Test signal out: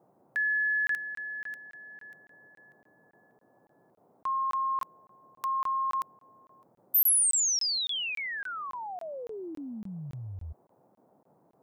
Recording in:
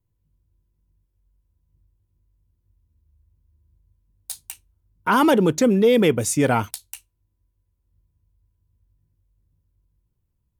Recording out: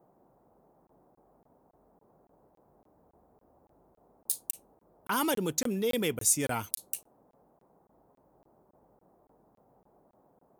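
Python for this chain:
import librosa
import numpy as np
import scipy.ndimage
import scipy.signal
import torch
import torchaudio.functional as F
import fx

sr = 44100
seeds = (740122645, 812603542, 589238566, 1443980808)

y = librosa.effects.preemphasis(x, coef=0.8, zi=[0.0])
y = fx.dmg_noise_band(y, sr, seeds[0], low_hz=120.0, high_hz=850.0, level_db=-65.0)
y = fx.buffer_crackle(y, sr, first_s=0.87, period_s=0.28, block=1024, kind='zero')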